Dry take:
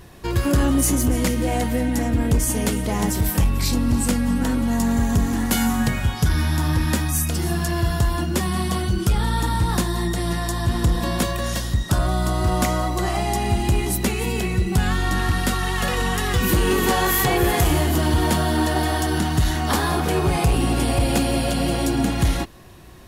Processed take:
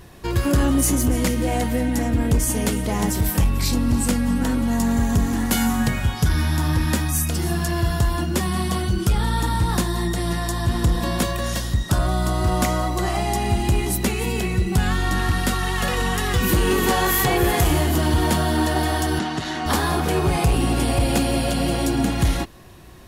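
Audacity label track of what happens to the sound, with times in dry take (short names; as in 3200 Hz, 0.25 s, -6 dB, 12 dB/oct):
19.190000	19.660000	BPF 230–5600 Hz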